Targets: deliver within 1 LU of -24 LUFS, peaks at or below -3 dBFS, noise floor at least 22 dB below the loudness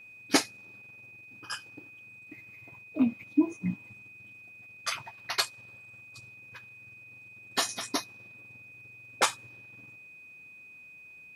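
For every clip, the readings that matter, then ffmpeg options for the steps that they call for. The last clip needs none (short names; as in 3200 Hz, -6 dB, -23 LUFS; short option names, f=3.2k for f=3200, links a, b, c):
steady tone 2500 Hz; tone level -48 dBFS; loudness -31.0 LUFS; peak -6.5 dBFS; loudness target -24.0 LUFS
-> -af "bandreject=f=2.5k:w=30"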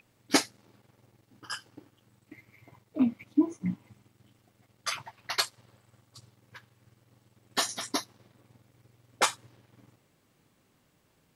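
steady tone none; loudness -31.0 LUFS; peak -6.5 dBFS; loudness target -24.0 LUFS
-> -af "volume=7dB,alimiter=limit=-3dB:level=0:latency=1"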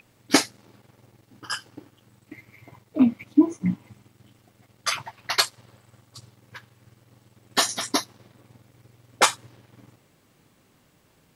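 loudness -24.5 LUFS; peak -3.0 dBFS; noise floor -62 dBFS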